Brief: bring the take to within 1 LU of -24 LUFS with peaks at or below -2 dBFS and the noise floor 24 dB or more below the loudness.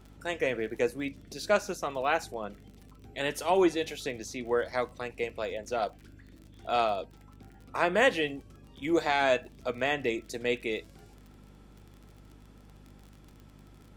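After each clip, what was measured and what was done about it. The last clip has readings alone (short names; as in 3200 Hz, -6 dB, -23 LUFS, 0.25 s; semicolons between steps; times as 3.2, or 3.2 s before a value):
ticks 36/s; hum 50 Hz; harmonics up to 250 Hz; hum level -52 dBFS; loudness -30.5 LUFS; peak -9.5 dBFS; loudness target -24.0 LUFS
-> de-click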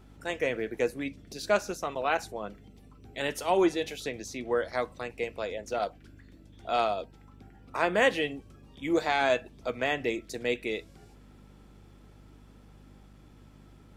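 ticks 0/s; hum 50 Hz; harmonics up to 250 Hz; hum level -52 dBFS
-> de-hum 50 Hz, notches 5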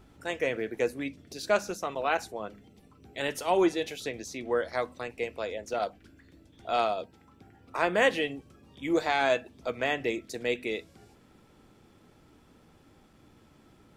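hum none; loudness -30.5 LUFS; peak -9.5 dBFS; loudness target -24.0 LUFS
-> gain +6.5 dB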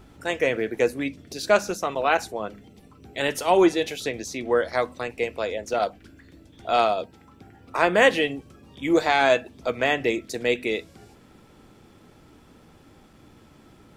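loudness -24.0 LUFS; peak -3.0 dBFS; noise floor -53 dBFS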